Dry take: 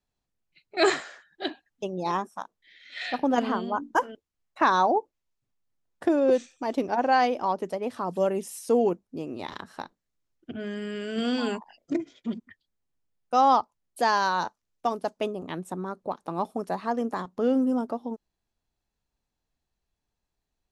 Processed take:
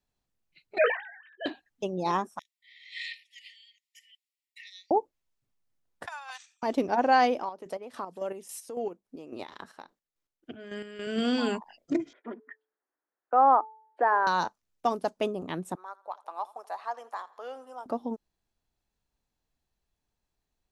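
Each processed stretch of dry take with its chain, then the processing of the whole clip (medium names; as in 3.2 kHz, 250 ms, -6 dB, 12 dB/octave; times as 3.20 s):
0.78–1.46 s: formants replaced by sine waves + bass shelf 350 Hz -10 dB + doubling 18 ms -11 dB
2.39–4.91 s: compression 2.5:1, threshold -33 dBFS + brick-wall FIR high-pass 1.8 kHz + band-stop 6.2 kHz, Q 7.8
6.06–6.63 s: steep high-pass 800 Hz 72 dB/octave + transient shaper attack +1 dB, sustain -8 dB
7.38–11.07 s: tone controls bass -9 dB, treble -1 dB + compression 3:1, threshold -30 dBFS + square tremolo 3.6 Hz, depth 60%, duty 40%
12.13–14.27 s: Chebyshev band-pass 310–1700 Hz, order 3 + de-hum 437.3 Hz, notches 2 + tape noise reduction on one side only encoder only
15.75–17.86 s: ladder high-pass 630 Hz, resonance 30% + feedback delay 83 ms, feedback 53%, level -21 dB
whole clip: none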